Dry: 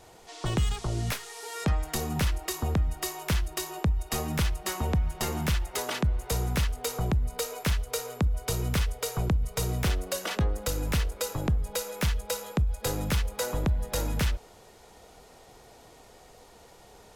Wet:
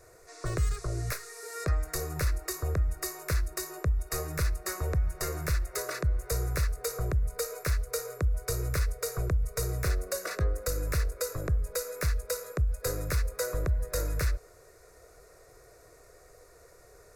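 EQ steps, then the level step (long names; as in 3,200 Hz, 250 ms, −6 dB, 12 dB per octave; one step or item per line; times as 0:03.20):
dynamic equaliser 4,300 Hz, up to +4 dB, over −48 dBFS, Q 2.6
phaser with its sweep stopped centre 850 Hz, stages 6
0.0 dB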